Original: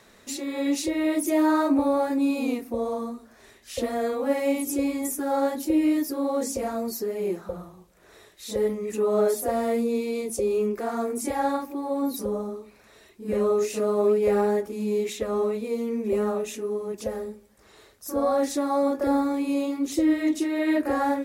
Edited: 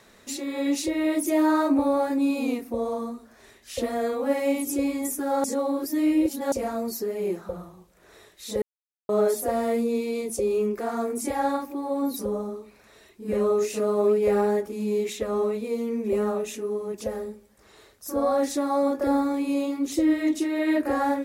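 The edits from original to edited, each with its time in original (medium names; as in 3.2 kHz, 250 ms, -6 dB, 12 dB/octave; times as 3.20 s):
5.44–6.52 s: reverse
8.62–9.09 s: mute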